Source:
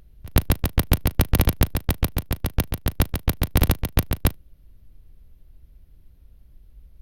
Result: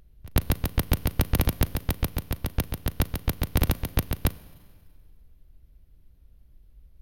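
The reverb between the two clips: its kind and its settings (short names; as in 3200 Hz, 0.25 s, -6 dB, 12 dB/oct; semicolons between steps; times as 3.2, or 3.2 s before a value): Schroeder reverb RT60 1.9 s, combs from 33 ms, DRR 18.5 dB; gain -4.5 dB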